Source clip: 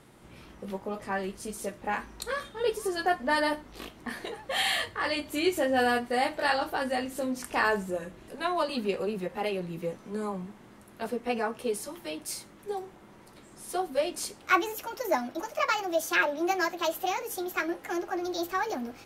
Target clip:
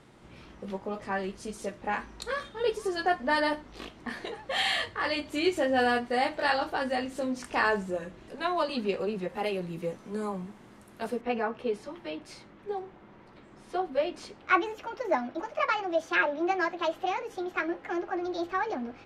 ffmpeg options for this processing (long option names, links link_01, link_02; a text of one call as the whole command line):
ffmpeg -i in.wav -af "asetnsamples=nb_out_samples=441:pad=0,asendcmd='9.28 lowpass f 11000;11.21 lowpass f 3100',lowpass=6700" out.wav